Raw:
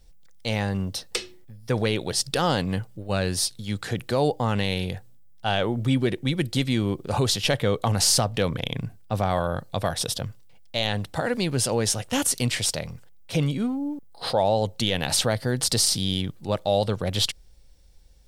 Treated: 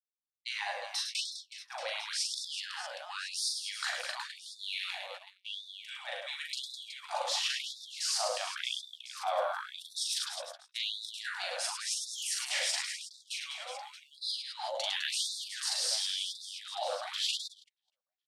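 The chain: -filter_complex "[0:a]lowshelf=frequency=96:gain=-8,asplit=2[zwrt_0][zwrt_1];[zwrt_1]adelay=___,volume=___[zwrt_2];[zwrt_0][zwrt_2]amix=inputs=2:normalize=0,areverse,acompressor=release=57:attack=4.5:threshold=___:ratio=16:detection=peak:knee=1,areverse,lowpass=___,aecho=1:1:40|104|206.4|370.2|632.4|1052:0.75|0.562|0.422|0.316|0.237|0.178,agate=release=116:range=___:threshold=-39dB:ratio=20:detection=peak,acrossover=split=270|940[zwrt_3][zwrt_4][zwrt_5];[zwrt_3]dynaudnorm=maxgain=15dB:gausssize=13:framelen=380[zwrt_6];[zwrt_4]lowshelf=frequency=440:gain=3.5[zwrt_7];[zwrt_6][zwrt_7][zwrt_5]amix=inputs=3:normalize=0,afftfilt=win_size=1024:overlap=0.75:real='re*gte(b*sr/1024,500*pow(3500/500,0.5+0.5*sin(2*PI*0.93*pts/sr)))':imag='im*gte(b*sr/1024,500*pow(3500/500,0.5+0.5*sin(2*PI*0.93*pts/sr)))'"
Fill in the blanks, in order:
16, -10dB, -30dB, 7900, -40dB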